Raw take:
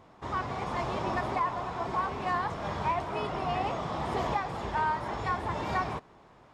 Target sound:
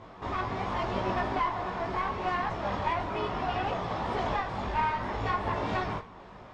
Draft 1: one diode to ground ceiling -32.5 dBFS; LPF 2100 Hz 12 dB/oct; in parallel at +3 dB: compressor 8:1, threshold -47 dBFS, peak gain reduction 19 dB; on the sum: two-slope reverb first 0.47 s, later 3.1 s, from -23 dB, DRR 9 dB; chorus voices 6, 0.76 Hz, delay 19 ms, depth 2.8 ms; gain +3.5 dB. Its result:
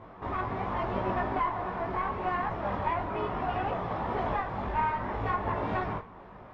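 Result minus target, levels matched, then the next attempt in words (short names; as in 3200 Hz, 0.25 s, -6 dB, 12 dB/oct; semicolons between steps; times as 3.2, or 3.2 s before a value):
4000 Hz band -7.5 dB
one diode to ground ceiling -32.5 dBFS; LPF 5300 Hz 12 dB/oct; in parallel at +3 dB: compressor 8:1, threshold -47 dBFS, peak gain reduction 19 dB; on the sum: two-slope reverb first 0.47 s, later 3.1 s, from -23 dB, DRR 9 dB; chorus voices 6, 0.76 Hz, delay 19 ms, depth 2.8 ms; gain +3.5 dB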